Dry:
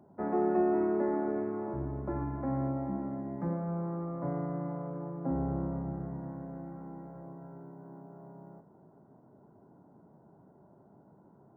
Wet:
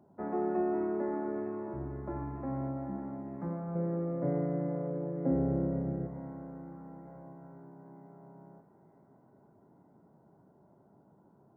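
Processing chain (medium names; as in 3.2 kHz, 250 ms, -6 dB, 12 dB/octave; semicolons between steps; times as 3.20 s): 3.75–6.07 s: graphic EQ 125/250/500/1000/2000 Hz +5/+4/+11/-9/+8 dB; thinning echo 910 ms, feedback 66%, high-pass 1.2 kHz, level -10 dB; trim -3.5 dB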